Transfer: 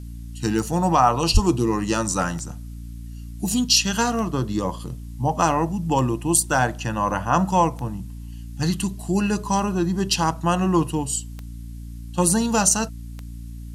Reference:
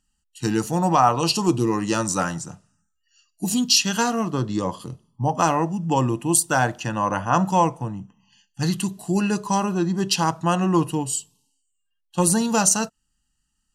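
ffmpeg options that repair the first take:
-filter_complex "[0:a]adeclick=t=4,bandreject=f=57.8:t=h:w=4,bandreject=f=115.6:t=h:w=4,bandreject=f=173.4:t=h:w=4,bandreject=f=231.2:t=h:w=4,bandreject=f=289:t=h:w=4,asplit=3[a][b][c];[a]afade=t=out:st=1.33:d=0.02[d];[b]highpass=f=140:w=0.5412,highpass=f=140:w=1.3066,afade=t=in:st=1.33:d=0.02,afade=t=out:st=1.45:d=0.02[e];[c]afade=t=in:st=1.45:d=0.02[f];[d][e][f]amix=inputs=3:normalize=0,agate=range=-21dB:threshold=-27dB"

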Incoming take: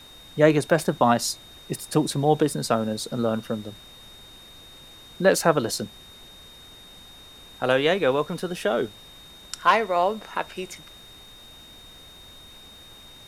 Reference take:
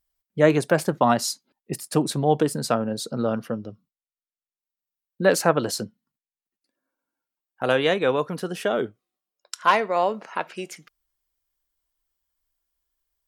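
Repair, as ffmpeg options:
-af "bandreject=f=3.7k:w=30,afftdn=nr=30:nf=-47"

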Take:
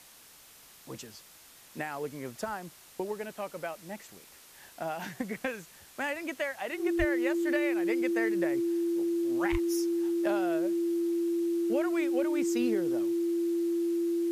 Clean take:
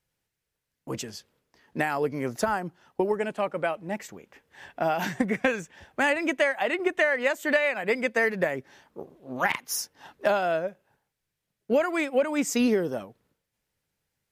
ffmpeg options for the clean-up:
-filter_complex "[0:a]bandreject=f=340:w=30,asplit=3[a][b][c];[a]afade=t=out:st=6.98:d=0.02[d];[b]highpass=f=140:w=0.5412,highpass=f=140:w=1.3066,afade=t=in:st=6.98:d=0.02,afade=t=out:st=7.1:d=0.02[e];[c]afade=t=in:st=7.1:d=0.02[f];[d][e][f]amix=inputs=3:normalize=0,asplit=3[g][h][i];[g]afade=t=out:st=9.51:d=0.02[j];[h]highpass=f=140:w=0.5412,highpass=f=140:w=1.3066,afade=t=in:st=9.51:d=0.02,afade=t=out:st=9.63:d=0.02[k];[i]afade=t=in:st=9.63:d=0.02[l];[j][k][l]amix=inputs=3:normalize=0,afwtdn=0.0022,asetnsamples=n=441:p=0,asendcmd='0.83 volume volume 9.5dB',volume=0dB"

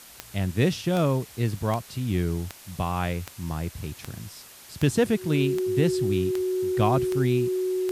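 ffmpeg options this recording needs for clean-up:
-af "adeclick=t=4,bandreject=f=370:w=30,afwtdn=0.005"

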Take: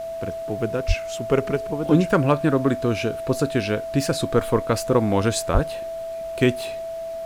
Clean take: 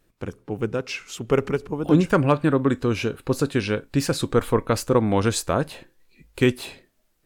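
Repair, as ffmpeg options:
-filter_complex "[0:a]bandreject=f=660:w=30,asplit=3[a][b][c];[a]afade=t=out:st=0.87:d=0.02[d];[b]highpass=f=140:w=0.5412,highpass=f=140:w=1.3066,afade=t=in:st=0.87:d=0.02,afade=t=out:st=0.99:d=0.02[e];[c]afade=t=in:st=0.99:d=0.02[f];[d][e][f]amix=inputs=3:normalize=0,asplit=3[g][h][i];[g]afade=t=out:st=5.53:d=0.02[j];[h]highpass=f=140:w=0.5412,highpass=f=140:w=1.3066,afade=t=in:st=5.53:d=0.02,afade=t=out:st=5.65:d=0.02[k];[i]afade=t=in:st=5.65:d=0.02[l];[j][k][l]amix=inputs=3:normalize=0,agate=range=-21dB:threshold=-23dB"

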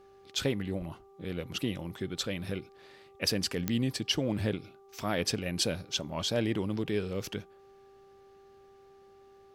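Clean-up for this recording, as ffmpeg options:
-af "adeclick=t=4,bandreject=f=392.8:t=h:w=4,bandreject=f=785.6:t=h:w=4,bandreject=f=1.1784k:t=h:w=4"

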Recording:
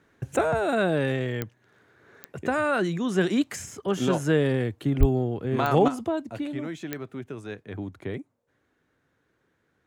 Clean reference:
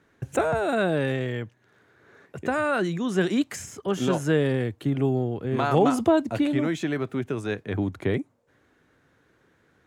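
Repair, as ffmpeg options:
-filter_complex "[0:a]adeclick=t=4,asplit=3[a][b][c];[a]afade=t=out:st=4.99:d=0.02[d];[b]highpass=f=140:w=0.5412,highpass=f=140:w=1.3066,afade=t=in:st=4.99:d=0.02,afade=t=out:st=5.11:d=0.02[e];[c]afade=t=in:st=5.11:d=0.02[f];[d][e][f]amix=inputs=3:normalize=0,asetnsamples=n=441:p=0,asendcmd='5.88 volume volume 8dB',volume=0dB"

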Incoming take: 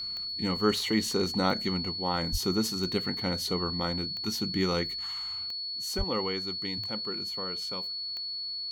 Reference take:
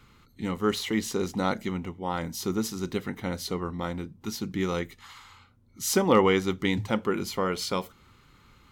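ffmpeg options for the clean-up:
-filter_complex "[0:a]adeclick=t=4,bandreject=f=4.4k:w=30,asplit=3[a][b][c];[a]afade=t=out:st=2.31:d=0.02[d];[b]highpass=f=140:w=0.5412,highpass=f=140:w=1.3066,afade=t=in:st=2.31:d=0.02,afade=t=out:st=2.43:d=0.02[e];[c]afade=t=in:st=2.43:d=0.02[f];[d][e][f]amix=inputs=3:normalize=0,asplit=3[g][h][i];[g]afade=t=out:st=5.97:d=0.02[j];[h]highpass=f=140:w=0.5412,highpass=f=140:w=1.3066,afade=t=in:st=5.97:d=0.02,afade=t=out:st=6.09:d=0.02[k];[i]afade=t=in:st=6.09:d=0.02[l];[j][k][l]amix=inputs=3:normalize=0,asetnsamples=n=441:p=0,asendcmd='5.51 volume volume 11.5dB',volume=0dB"

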